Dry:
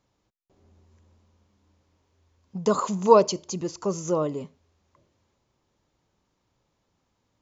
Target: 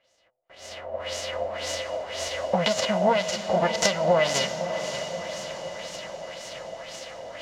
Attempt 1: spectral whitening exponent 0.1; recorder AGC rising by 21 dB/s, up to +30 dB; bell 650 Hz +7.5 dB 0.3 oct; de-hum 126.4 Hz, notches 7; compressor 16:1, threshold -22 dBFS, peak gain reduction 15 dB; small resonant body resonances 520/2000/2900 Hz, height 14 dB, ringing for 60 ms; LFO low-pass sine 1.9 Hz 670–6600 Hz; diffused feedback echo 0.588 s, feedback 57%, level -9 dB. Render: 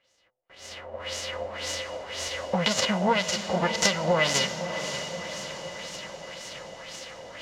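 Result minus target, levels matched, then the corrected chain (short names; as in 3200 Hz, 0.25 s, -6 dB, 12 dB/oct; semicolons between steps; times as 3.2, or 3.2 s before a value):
500 Hz band -3.5 dB
spectral whitening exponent 0.1; recorder AGC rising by 21 dB/s, up to +30 dB; bell 650 Hz +19 dB 0.3 oct; de-hum 126.4 Hz, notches 7; compressor 16:1, threshold -22 dBFS, peak gain reduction 17 dB; small resonant body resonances 520/2000/2900 Hz, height 14 dB, ringing for 60 ms; LFO low-pass sine 1.9 Hz 670–6600 Hz; diffused feedback echo 0.588 s, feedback 57%, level -9 dB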